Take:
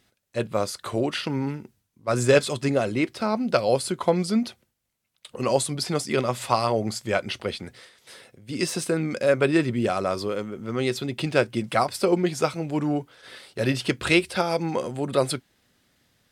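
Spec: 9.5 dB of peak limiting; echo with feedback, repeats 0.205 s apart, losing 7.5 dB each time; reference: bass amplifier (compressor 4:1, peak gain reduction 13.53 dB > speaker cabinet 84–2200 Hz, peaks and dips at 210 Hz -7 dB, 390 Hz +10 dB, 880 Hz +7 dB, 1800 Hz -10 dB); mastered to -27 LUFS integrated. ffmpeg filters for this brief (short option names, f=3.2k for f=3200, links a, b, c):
-af "alimiter=limit=-15dB:level=0:latency=1,aecho=1:1:205|410|615|820|1025:0.422|0.177|0.0744|0.0312|0.0131,acompressor=threshold=-34dB:ratio=4,highpass=f=84:w=0.5412,highpass=f=84:w=1.3066,equalizer=f=210:t=q:w=4:g=-7,equalizer=f=390:t=q:w=4:g=10,equalizer=f=880:t=q:w=4:g=7,equalizer=f=1.8k:t=q:w=4:g=-10,lowpass=f=2.2k:w=0.5412,lowpass=f=2.2k:w=1.3066,volume=7.5dB"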